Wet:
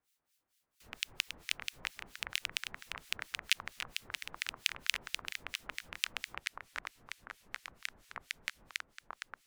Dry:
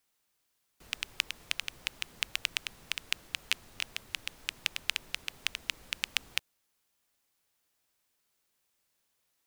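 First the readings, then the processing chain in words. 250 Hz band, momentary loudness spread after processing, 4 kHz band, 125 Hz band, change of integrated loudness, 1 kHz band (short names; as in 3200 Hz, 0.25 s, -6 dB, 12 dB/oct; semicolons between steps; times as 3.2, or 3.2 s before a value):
-1.5 dB, 13 LU, -3.0 dB, -1.5 dB, -4.0 dB, +2.0 dB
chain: echoes that change speed 0.248 s, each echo -5 st, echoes 3, each echo -6 dB; harmonic tremolo 4.4 Hz, depth 100%, crossover 1700 Hz; gain +1 dB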